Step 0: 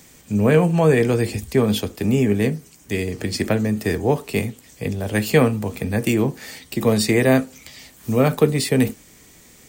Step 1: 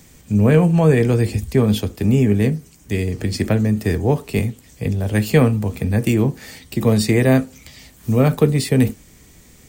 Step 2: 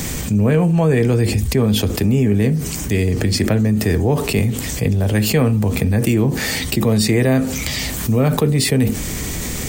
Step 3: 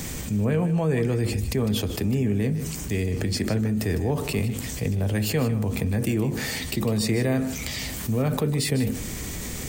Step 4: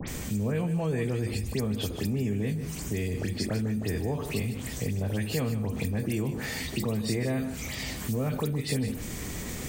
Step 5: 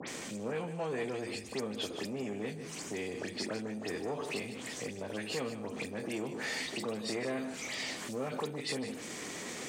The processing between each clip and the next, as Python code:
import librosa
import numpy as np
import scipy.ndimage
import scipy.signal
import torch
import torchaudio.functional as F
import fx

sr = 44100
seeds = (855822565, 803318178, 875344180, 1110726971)

y1 = fx.low_shelf(x, sr, hz=160.0, db=11.5)
y1 = F.gain(torch.from_numpy(y1), -1.5).numpy()
y2 = fx.env_flatten(y1, sr, amount_pct=70)
y2 = F.gain(torch.from_numpy(y2), -3.5).numpy()
y3 = y2 + 10.0 ** (-12.5 / 20.0) * np.pad(y2, (int(153 * sr / 1000.0), 0))[:len(y2)]
y3 = F.gain(torch.from_numpy(y3), -8.5).numpy()
y4 = fx.dispersion(y3, sr, late='highs', ms=81.0, hz=2600.0)
y4 = fx.band_squash(y4, sr, depth_pct=40)
y4 = F.gain(torch.from_numpy(y4), -5.5).numpy()
y5 = 10.0 ** (-25.0 / 20.0) * np.tanh(y4 / 10.0 ** (-25.0 / 20.0))
y5 = fx.bandpass_edges(y5, sr, low_hz=330.0, high_hz=7600.0)